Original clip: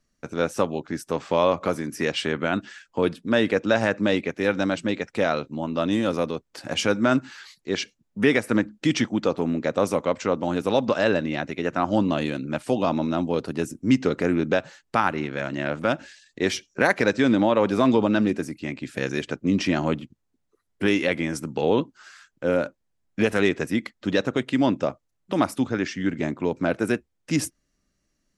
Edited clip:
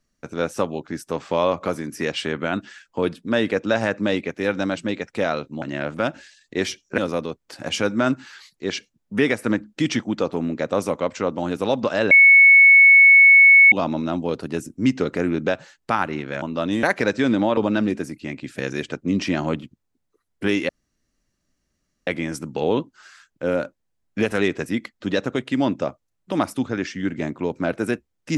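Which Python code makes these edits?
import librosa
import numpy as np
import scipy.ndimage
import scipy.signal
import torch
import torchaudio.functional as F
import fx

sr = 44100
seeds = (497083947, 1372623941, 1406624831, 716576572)

y = fx.edit(x, sr, fx.swap(start_s=5.62, length_s=0.41, other_s=15.47, other_length_s=1.36),
    fx.bleep(start_s=11.16, length_s=1.61, hz=2210.0, db=-7.0),
    fx.cut(start_s=17.57, length_s=0.39),
    fx.insert_room_tone(at_s=21.08, length_s=1.38), tone=tone)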